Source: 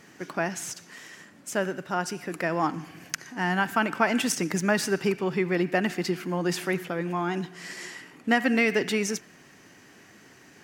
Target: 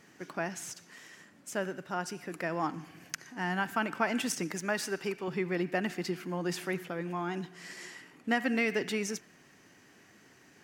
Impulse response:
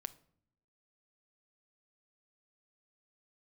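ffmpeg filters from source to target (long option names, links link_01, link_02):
-filter_complex "[0:a]asettb=1/sr,asplit=3[link_01][link_02][link_03];[link_01]atrim=end=4.514[link_04];[link_02]atrim=start=4.51:end=5.28,asetpts=PTS-STARTPTS,afade=type=in:duration=0.004:curve=qsin,afade=type=out:start_time=0.766:duration=0.004:curve=qsin,equalizer=frequency=63:width=0.41:gain=-13[link_05];[link_03]atrim=start=5.276[link_06];[link_04][link_05]acrossfade=duration=0.004:curve1=hsin:curve2=qsin[link_07];[link_07][link_06]acrossfade=duration=0.004:curve1=qsin:curve2=hsin,volume=-6.5dB"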